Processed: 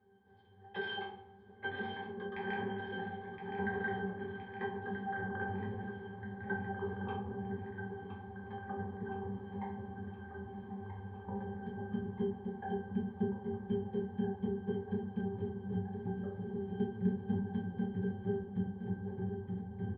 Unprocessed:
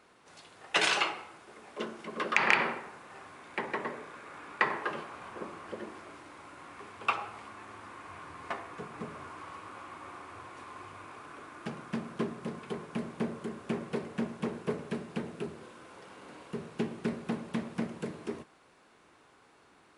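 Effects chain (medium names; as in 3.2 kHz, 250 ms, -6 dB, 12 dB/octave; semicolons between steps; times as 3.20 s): spectral sustain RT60 0.35 s; brick-wall FIR low-pass 5.3 kHz; tone controls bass -1 dB, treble -5 dB; feedback delay 1017 ms, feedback 60%, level -8.5 dB; ever faster or slower copies 688 ms, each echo -4 st, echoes 3; bass shelf 260 Hz +10.5 dB; pitch-class resonator G, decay 0.22 s; trim +3 dB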